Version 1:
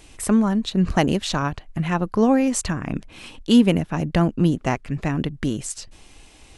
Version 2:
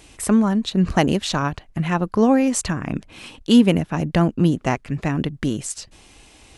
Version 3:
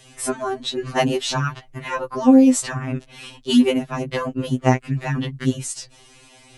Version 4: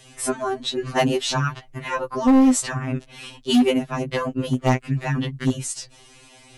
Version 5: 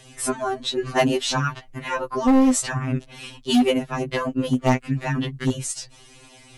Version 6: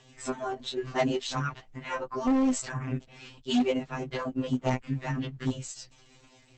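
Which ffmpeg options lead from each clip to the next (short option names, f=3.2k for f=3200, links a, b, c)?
-af "highpass=f=46:p=1,volume=1.5dB"
-af "afftfilt=real='re*2.45*eq(mod(b,6),0)':imag='im*2.45*eq(mod(b,6),0)':win_size=2048:overlap=0.75,volume=2.5dB"
-af "asoftclip=type=hard:threshold=-11.5dB"
-af "aphaser=in_gain=1:out_gain=1:delay=4.5:decay=0.27:speed=0.32:type=triangular"
-af "volume=-7dB" -ar 48000 -c:a libopus -b:a 10k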